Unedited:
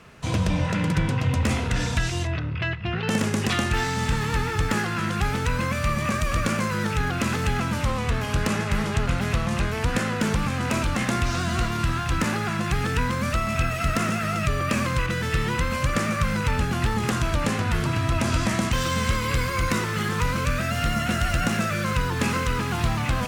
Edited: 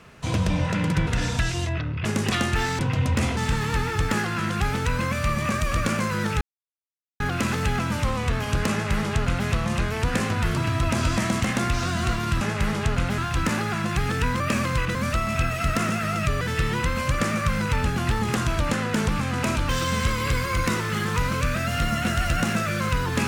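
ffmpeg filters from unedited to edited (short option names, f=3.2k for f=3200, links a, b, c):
-filter_complex "[0:a]asplit=15[a][b][c][d][e][f][g][h][i][j][k][l][m][n][o];[a]atrim=end=1.072[p];[b]atrim=start=1.648:end=2.632[q];[c]atrim=start=3.228:end=3.972[r];[d]atrim=start=1.068:end=1.652[s];[e]atrim=start=3.968:end=7.01,asetpts=PTS-STARTPTS,afade=t=out:st=3.038:d=0.004:c=hsin,apad=pad_dur=0.79[t];[f]atrim=start=7.01:end=10.002,asetpts=PTS-STARTPTS,afade=t=in:d=0.004:c=hsin[u];[g]atrim=start=17.478:end=18.732[v];[h]atrim=start=10.958:end=11.932[w];[i]atrim=start=8.518:end=9.292[x];[j]atrim=start=11.928:end=13.152[y];[k]atrim=start=14.608:end=15.162[z];[l]atrim=start=13.148:end=14.612[aa];[m]atrim=start=15.158:end=17.482[ab];[n]atrim=start=9.998:end=10.962[ac];[o]atrim=start=18.728[ad];[p][q]acrossfade=d=0.004:c1=hsin:c2=hsin[ae];[ae][r]acrossfade=d=0.004:c1=hsin:c2=hsin[af];[af][s]acrossfade=d=0.004:c1=hsin:c2=hsin[ag];[t][u]concat=n=2:v=0:a=1[ah];[ag][ah]acrossfade=d=0.004:c1=hsin:c2=hsin[ai];[ai][v]acrossfade=d=0.004:c1=hsin:c2=hsin[aj];[aj][w]acrossfade=d=0.004:c1=hsin:c2=hsin[ak];[ak][x]acrossfade=d=0.004:c1=hsin:c2=hsin[al];[al][y]acrossfade=d=0.004:c1=hsin:c2=hsin[am];[am][z]acrossfade=d=0.004:c1=hsin:c2=hsin[an];[an][aa]acrossfade=d=0.004:c1=hsin:c2=hsin[ao];[ao][ab]acrossfade=d=0.004:c1=hsin:c2=hsin[ap];[ap][ac]acrossfade=d=0.004:c1=hsin:c2=hsin[aq];[aq][ad]acrossfade=d=0.004:c1=hsin:c2=hsin"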